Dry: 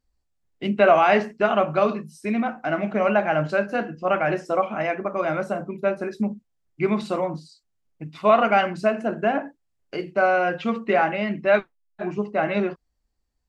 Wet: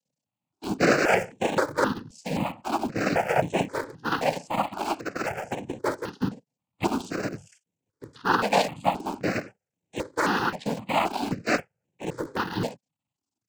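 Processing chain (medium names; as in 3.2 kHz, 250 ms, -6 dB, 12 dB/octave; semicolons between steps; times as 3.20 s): cycle switcher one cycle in 2, muted; noise-vocoded speech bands 8; in parallel at -7.5 dB: small samples zeroed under -27 dBFS; on the sum: stepped phaser 3.8 Hz 350–4800 Hz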